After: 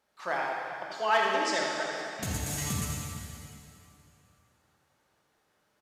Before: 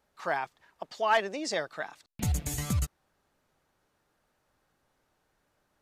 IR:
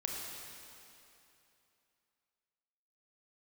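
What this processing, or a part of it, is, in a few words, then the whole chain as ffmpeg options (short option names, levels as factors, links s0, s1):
PA in a hall: -filter_complex "[0:a]highpass=f=150:p=1,equalizer=f=3500:t=o:w=3:g=3,aecho=1:1:83:0.398[s0];[1:a]atrim=start_sample=2205[s1];[s0][s1]afir=irnorm=-1:irlink=0,volume=0.841"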